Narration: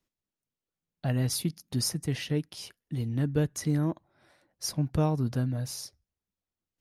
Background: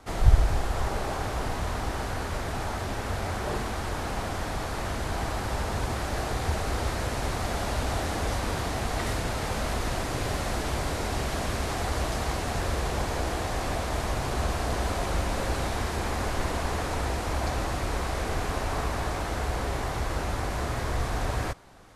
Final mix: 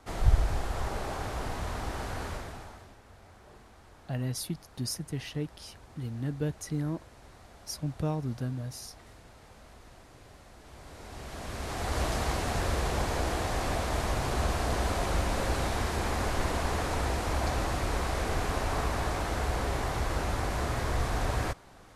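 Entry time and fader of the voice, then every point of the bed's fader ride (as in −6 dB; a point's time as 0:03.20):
3.05 s, −5.0 dB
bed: 0:02.29 −4.5 dB
0:03.00 −23.5 dB
0:10.56 −23.5 dB
0:12.01 −1 dB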